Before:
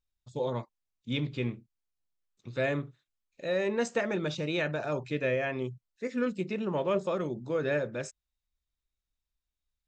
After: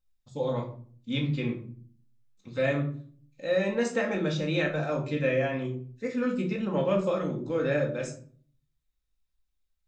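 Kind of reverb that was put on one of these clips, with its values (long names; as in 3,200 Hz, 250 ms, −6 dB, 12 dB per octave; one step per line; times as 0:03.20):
rectangular room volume 430 cubic metres, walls furnished, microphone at 2.1 metres
level −1 dB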